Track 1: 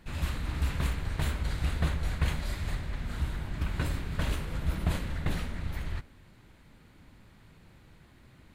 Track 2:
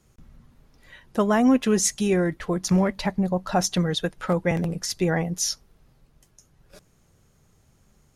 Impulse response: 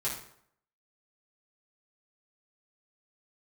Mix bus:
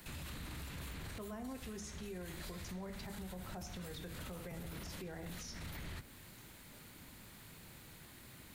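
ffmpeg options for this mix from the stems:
-filter_complex "[0:a]lowshelf=frequency=74:gain=-9.5,alimiter=level_in=0.5dB:limit=-24dB:level=0:latency=1:release=390,volume=-0.5dB,aemphasis=mode=production:type=75fm,volume=1.5dB[link_01];[1:a]volume=-20dB,asplit=3[link_02][link_03][link_04];[link_03]volume=-7dB[link_05];[link_04]apad=whole_len=376717[link_06];[link_01][link_06]sidechaincompress=threshold=-53dB:ratio=8:attack=36:release=286[link_07];[2:a]atrim=start_sample=2205[link_08];[link_05][link_08]afir=irnorm=-1:irlink=0[link_09];[link_07][link_02][link_09]amix=inputs=3:normalize=0,acrossover=split=110|460|5600[link_10][link_11][link_12][link_13];[link_10]acompressor=threshold=-42dB:ratio=4[link_14];[link_11]acompressor=threshold=-44dB:ratio=4[link_15];[link_12]acompressor=threshold=-47dB:ratio=4[link_16];[link_13]acompressor=threshold=-54dB:ratio=4[link_17];[link_14][link_15][link_16][link_17]amix=inputs=4:normalize=0,alimiter=level_in=14dB:limit=-24dB:level=0:latency=1:release=17,volume=-14dB"

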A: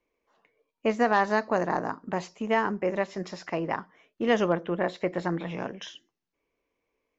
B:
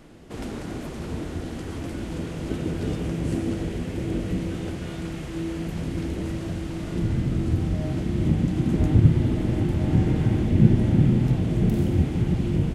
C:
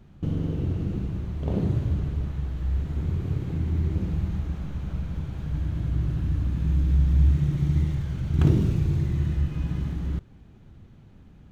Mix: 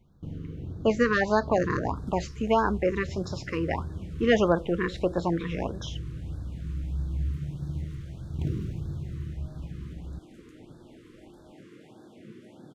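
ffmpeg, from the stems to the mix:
ffmpeg -i stem1.wav -i stem2.wav -i stem3.wav -filter_complex "[0:a]volume=2.5dB[link_01];[1:a]highpass=420,adelay=1650,volume=-17.5dB[link_02];[2:a]volume=-10.5dB[link_03];[link_01][link_02][link_03]amix=inputs=3:normalize=0,afftfilt=real='re*(1-between(b*sr/1024,680*pow(2500/680,0.5+0.5*sin(2*PI*1.6*pts/sr))/1.41,680*pow(2500/680,0.5+0.5*sin(2*PI*1.6*pts/sr))*1.41))':imag='im*(1-between(b*sr/1024,680*pow(2500/680,0.5+0.5*sin(2*PI*1.6*pts/sr))/1.41,680*pow(2500/680,0.5+0.5*sin(2*PI*1.6*pts/sr))*1.41))':win_size=1024:overlap=0.75" out.wav

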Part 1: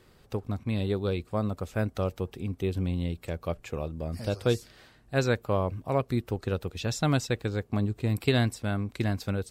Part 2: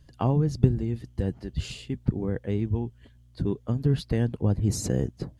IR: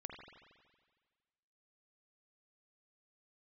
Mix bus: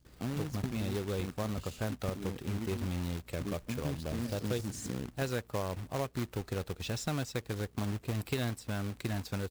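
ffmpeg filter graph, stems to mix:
-filter_complex "[0:a]aeval=exprs='val(0)+0.00141*(sin(2*PI*60*n/s)+sin(2*PI*2*60*n/s)/2+sin(2*PI*3*60*n/s)/3+sin(2*PI*4*60*n/s)/4+sin(2*PI*5*60*n/s)/5)':channel_layout=same,adelay=50,volume=-2.5dB[link_01];[1:a]equalizer=frequency=250:width_type=o:width=1:gain=9,equalizer=frequency=1000:width_type=o:width=1:gain=-11,equalizer=frequency=8000:width_type=o:width=1:gain=6,volume=-13.5dB[link_02];[link_01][link_02]amix=inputs=2:normalize=0,acrusher=bits=2:mode=log:mix=0:aa=0.000001,acompressor=threshold=-33dB:ratio=2.5"

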